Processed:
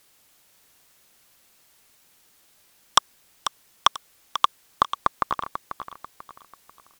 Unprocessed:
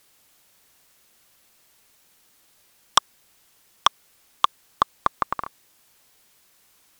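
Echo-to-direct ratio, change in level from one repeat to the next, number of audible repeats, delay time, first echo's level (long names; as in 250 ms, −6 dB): −10.0 dB, −9.0 dB, 3, 491 ms, −10.5 dB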